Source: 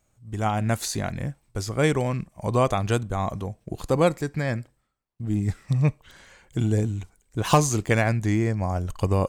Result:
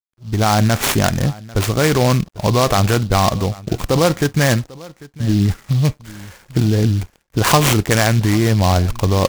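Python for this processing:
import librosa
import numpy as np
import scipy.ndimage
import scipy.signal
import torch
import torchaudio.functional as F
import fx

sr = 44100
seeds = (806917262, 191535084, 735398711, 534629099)

p1 = fx.dynamic_eq(x, sr, hz=1600.0, q=1.1, threshold_db=-38.0, ratio=4.0, max_db=4)
p2 = fx.over_compress(p1, sr, threshold_db=-25.0, ratio=-0.5)
p3 = p1 + (p2 * librosa.db_to_amplitude(2.0))
p4 = fx.sample_hold(p3, sr, seeds[0], rate_hz=9500.0, jitter_pct=0)
p5 = np.sign(p4) * np.maximum(np.abs(p4) - 10.0 ** (-49.5 / 20.0), 0.0)
p6 = p5 + fx.echo_single(p5, sr, ms=795, db=-21.0, dry=0)
p7 = fx.noise_mod_delay(p6, sr, seeds[1], noise_hz=3900.0, depth_ms=0.062)
y = p7 * librosa.db_to_amplitude(3.5)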